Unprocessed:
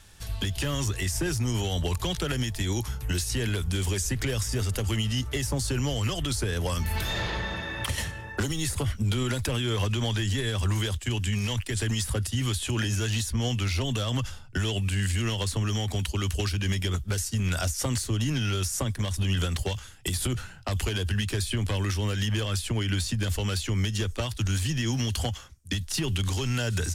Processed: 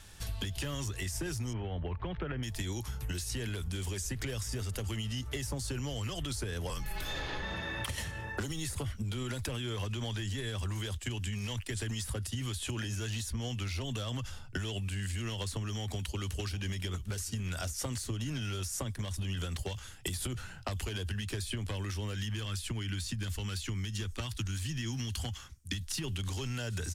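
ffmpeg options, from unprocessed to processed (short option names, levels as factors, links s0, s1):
-filter_complex "[0:a]asettb=1/sr,asplit=3[s0][s1][s2];[s0]atrim=end=1.534[s3];[s1]atrim=start=1.53:end=2.43,asetpts=PTS-STARTPTS,afade=t=in:d=0.004:c=qsin,afade=t=out:st=0.896:d=0.004:c=qsin,lowpass=f=2300:w=0.5412,lowpass=f=2300:w=1.3066[s4];[s2]atrim=start=2.426[s5];[s3][s4]acrossfade=d=0.004:c1=hsin:c2=qsin[s6];[s6][s5]acrossfade=d=0.004:c1=qsin:c2=hsin,asettb=1/sr,asplit=3[s7][s8][s9];[s7]atrim=end=6.704[s10];[s8]atrim=start=6.7:end=7.43,asetpts=PTS-STARTPTS,afade=t=in:d=0.004:c=qsin,afade=t=out:st=0.726:d=0.004:c=qsin,afreqshift=-45[s11];[s9]atrim=start=7.426[s12];[s10][s11]acrossfade=d=0.004:c1=hsin:c2=qsin[s13];[s13][s12]acrossfade=d=0.004:c1=qsin:c2=hsin,asplit=3[s14][s15][s16];[s14]afade=t=out:st=16.08:d=0.02[s17];[s15]aecho=1:1:747:0.106,afade=t=in:st=16.08:d=0.02,afade=t=out:st=18.63:d=0.02[s18];[s16]afade=t=in:st=18.63:d=0.02[s19];[s17][s18][s19]amix=inputs=3:normalize=0,asettb=1/sr,asplit=3[s20][s21][s22];[s20]atrim=end=22.174[s23];[s21]atrim=start=22.17:end=26.04,asetpts=PTS-STARTPTS,afade=t=in:d=0.004:c=qsin,afade=t=out:st=3.866:d=0.004:c=qsin,equalizer=f=560:w=1.5:g=-8.5[s24];[s22]atrim=start=26.036[s25];[s23][s24]acrossfade=d=0.004:c1=hsin:c2=qsin[s26];[s26][s25]acrossfade=d=0.004:c1=qsin:c2=hsin,acompressor=threshold=0.02:ratio=5"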